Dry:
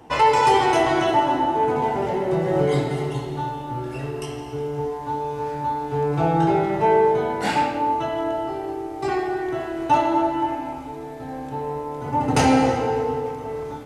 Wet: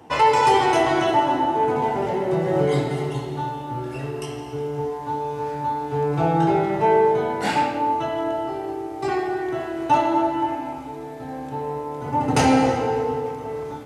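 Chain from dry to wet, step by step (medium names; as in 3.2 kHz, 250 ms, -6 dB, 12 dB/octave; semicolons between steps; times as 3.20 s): high-pass 68 Hz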